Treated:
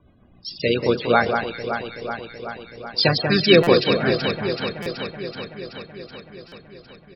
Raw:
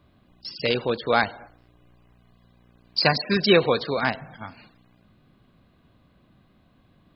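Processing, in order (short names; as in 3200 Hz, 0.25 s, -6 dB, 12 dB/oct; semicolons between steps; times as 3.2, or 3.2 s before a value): harmoniser -5 st -10 dB; rotary speaker horn 7.5 Hz, later 0.6 Hz, at 3.1; loudest bins only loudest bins 64; on a send: echo with dull and thin repeats by turns 0.189 s, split 2100 Hz, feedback 83%, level -5.5 dB; on the sum: stuck buffer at 3.63/4.82/6.48, samples 256, times 6; gain +5 dB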